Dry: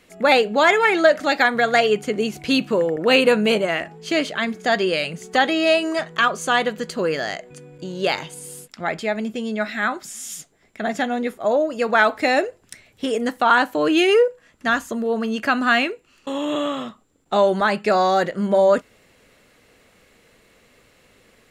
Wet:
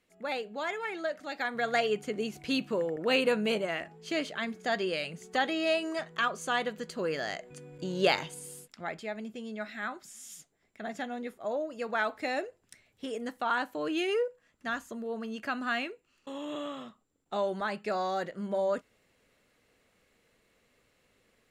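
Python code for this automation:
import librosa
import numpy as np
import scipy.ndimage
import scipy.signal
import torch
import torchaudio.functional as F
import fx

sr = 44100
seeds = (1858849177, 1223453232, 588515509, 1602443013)

y = fx.gain(x, sr, db=fx.line((1.29, -19.0), (1.69, -11.0), (6.95, -11.0), (8.0, -3.0), (9.02, -14.0)))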